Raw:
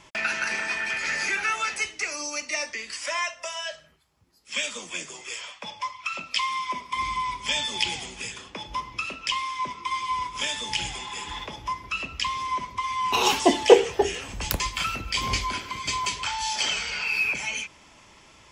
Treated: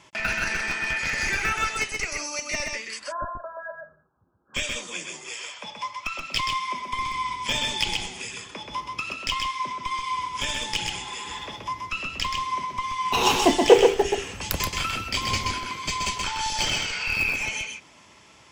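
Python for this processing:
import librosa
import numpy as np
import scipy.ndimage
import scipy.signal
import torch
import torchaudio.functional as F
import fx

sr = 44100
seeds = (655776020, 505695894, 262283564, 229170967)

p1 = scipy.signal.sosfilt(scipy.signal.butter(2, 76.0, 'highpass', fs=sr, output='sos'), x)
p2 = fx.schmitt(p1, sr, flips_db=-19.0)
p3 = p1 + (p2 * 10.0 ** (-4.5 / 20.0))
p4 = fx.brickwall_lowpass(p3, sr, high_hz=1700.0, at=(2.98, 4.54), fade=0.02)
p5 = p4 + 10.0 ** (-4.0 / 20.0) * np.pad(p4, (int(128 * sr / 1000.0), 0))[:len(p4)]
y = p5 * 10.0 ** (-1.0 / 20.0)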